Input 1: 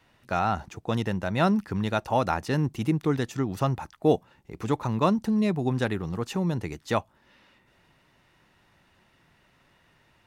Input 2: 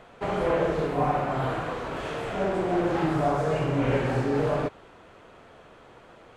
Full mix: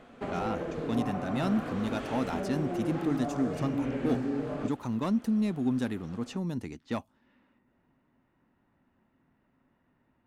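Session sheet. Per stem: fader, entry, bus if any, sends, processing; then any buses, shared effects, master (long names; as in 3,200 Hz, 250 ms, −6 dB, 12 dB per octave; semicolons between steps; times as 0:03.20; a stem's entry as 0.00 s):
−9.0 dB, 0.00 s, no send, low-pass that shuts in the quiet parts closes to 1,300 Hz, open at −24 dBFS; high-shelf EQ 5,600 Hz +9.5 dB; soft clipping −17 dBFS, distortion −16 dB
−4.5 dB, 0.00 s, no send, notch filter 940 Hz; downward compressor 4 to 1, threshold −30 dBFS, peak gain reduction 9 dB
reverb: not used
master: parametric band 250 Hz +13 dB 0.5 octaves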